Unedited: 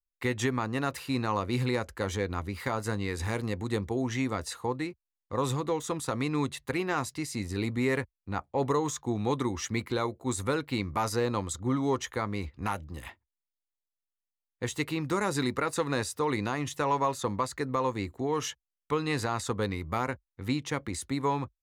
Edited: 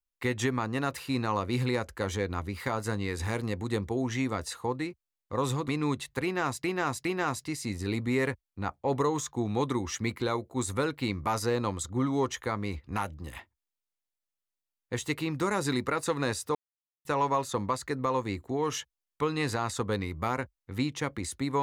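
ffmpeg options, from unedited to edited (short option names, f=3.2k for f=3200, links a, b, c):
-filter_complex "[0:a]asplit=6[a][b][c][d][e][f];[a]atrim=end=5.682[g];[b]atrim=start=6.198:end=7.162[h];[c]atrim=start=6.748:end=7.162[i];[d]atrim=start=6.748:end=16.25,asetpts=PTS-STARTPTS,afade=t=out:st=9.498:d=0.004:c=hsin[j];[e]atrim=start=16.25:end=16.75,asetpts=PTS-STARTPTS,volume=0[k];[f]atrim=start=16.75,asetpts=PTS-STARTPTS,afade=t=in:d=0.004:c=hsin[l];[g][h]acrossfade=d=0.004:c1=hsin:c2=hsin[m];[m][i]acrossfade=d=0.004:c1=hsin:c2=hsin[n];[j][k][l]concat=n=3:v=0:a=1[o];[n][o]acrossfade=d=0.004:c1=hsin:c2=hsin"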